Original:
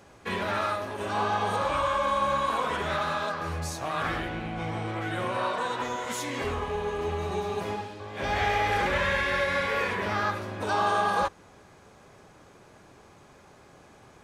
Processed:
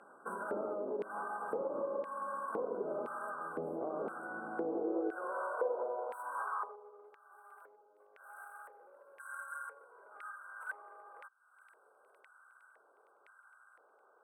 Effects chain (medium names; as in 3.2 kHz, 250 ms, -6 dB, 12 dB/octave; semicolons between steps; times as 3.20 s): tracing distortion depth 0.38 ms; brick-wall FIR band-stop 1.6–7.9 kHz; peaking EQ 470 Hz +4 dB 1.1 oct; LFO band-pass square 0.98 Hz 450–2300 Hz; 6.75–9.20 s: graphic EQ 1/2/4/8 kHz -3/-12/-11/-10 dB; feedback echo behind a high-pass 461 ms, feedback 68%, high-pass 3.7 kHz, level -24 dB; compression 4:1, threshold -50 dBFS, peak gain reduction 19.5 dB; high-pass sweep 210 Hz -> 1.9 kHz, 4.32–7.42 s; trim +10 dB